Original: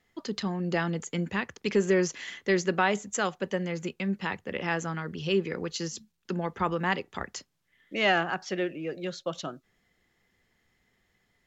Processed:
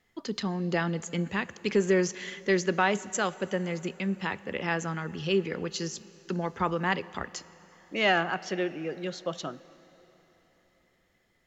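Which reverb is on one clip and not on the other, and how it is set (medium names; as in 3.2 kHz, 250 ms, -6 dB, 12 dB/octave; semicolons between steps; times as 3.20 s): plate-style reverb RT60 4.1 s, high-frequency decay 0.9×, DRR 18 dB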